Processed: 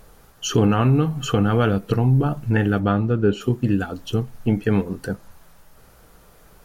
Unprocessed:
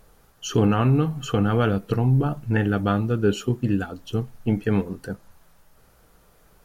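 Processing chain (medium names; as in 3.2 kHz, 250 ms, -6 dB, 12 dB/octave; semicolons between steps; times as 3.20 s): 2.78–3.40 s: low-pass 2.9 kHz -> 1.9 kHz 6 dB/octave; in parallel at 0 dB: compression, threshold -28 dBFS, peak gain reduction 13 dB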